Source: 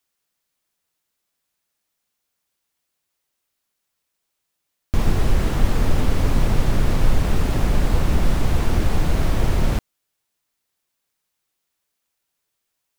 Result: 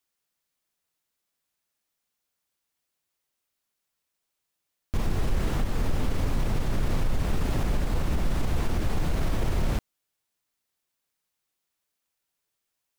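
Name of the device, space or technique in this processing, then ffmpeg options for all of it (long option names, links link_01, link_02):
stacked limiters: -af "alimiter=limit=-8.5dB:level=0:latency=1:release=317,alimiter=limit=-12.5dB:level=0:latency=1:release=21,volume=-4.5dB"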